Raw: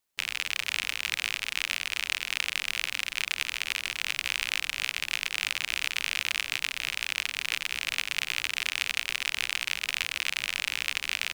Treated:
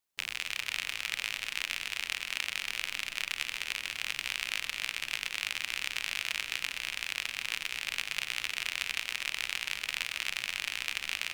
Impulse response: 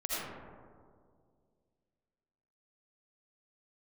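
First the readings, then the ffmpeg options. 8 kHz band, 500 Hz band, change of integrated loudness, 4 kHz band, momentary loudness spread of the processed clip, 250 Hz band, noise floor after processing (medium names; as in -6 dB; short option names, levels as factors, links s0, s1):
-4.5 dB, -4.0 dB, -4.0 dB, -4.5 dB, 1 LU, -4.0 dB, -48 dBFS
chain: -filter_complex "[0:a]asplit=2[s0][s1];[1:a]atrim=start_sample=2205,adelay=129[s2];[s1][s2]afir=irnorm=-1:irlink=0,volume=0.168[s3];[s0][s3]amix=inputs=2:normalize=0,volume=0.596"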